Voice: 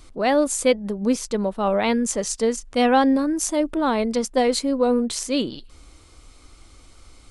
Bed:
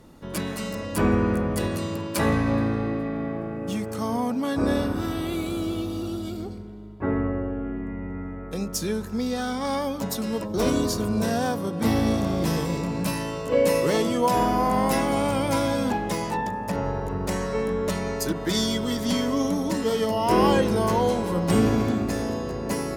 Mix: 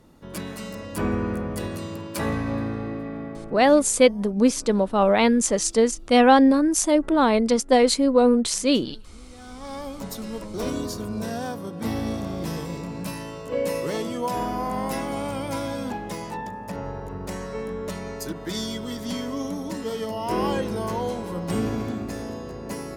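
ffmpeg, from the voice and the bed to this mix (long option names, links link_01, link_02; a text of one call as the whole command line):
ffmpeg -i stem1.wav -i stem2.wav -filter_complex "[0:a]adelay=3350,volume=2.5dB[link_01];[1:a]volume=13.5dB,afade=type=out:start_time=3.16:duration=0.86:silence=0.112202,afade=type=in:start_time=9.29:duration=0.7:silence=0.133352[link_02];[link_01][link_02]amix=inputs=2:normalize=0" out.wav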